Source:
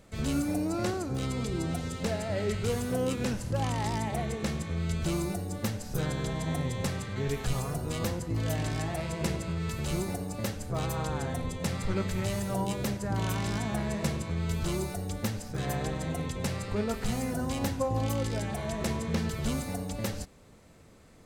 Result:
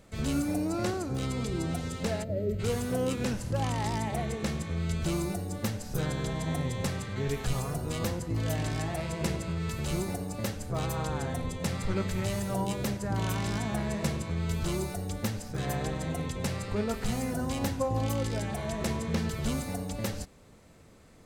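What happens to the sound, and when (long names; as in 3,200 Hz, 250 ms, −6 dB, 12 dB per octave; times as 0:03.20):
0:02.24–0:02.60: gain on a spectral selection 660–12,000 Hz −18 dB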